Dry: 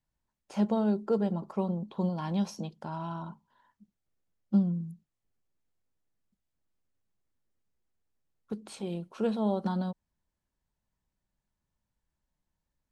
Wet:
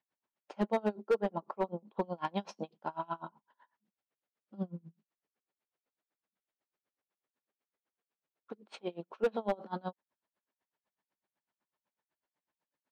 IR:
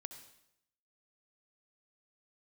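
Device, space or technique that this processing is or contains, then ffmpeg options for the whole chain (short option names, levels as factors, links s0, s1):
helicopter radio: -filter_complex "[0:a]highpass=380,lowpass=2900,aeval=exprs='val(0)*pow(10,-30*(0.5-0.5*cos(2*PI*8*n/s))/20)':c=same,asoftclip=type=hard:threshold=0.0316,asettb=1/sr,asplit=3[s0][s1][s2];[s0]atrim=end=1.164[s3];[s1]atrim=start=1.16:end=2.17,asetpts=PTS-STARTPTS,afade=t=in:d=0.004:c=qsin,afade=t=out:st=1.006:d=0.004:c=qsin,highshelf=f=4300:g=-5[s4];[s2]atrim=start=2.166[s5];[s3][s4]acrossfade=d=0.004:c1=hsin:c2=qsin[s6];[s6][s5]acrossfade=d=0.004:c1=qsin:c2=hsin,volume=2.37"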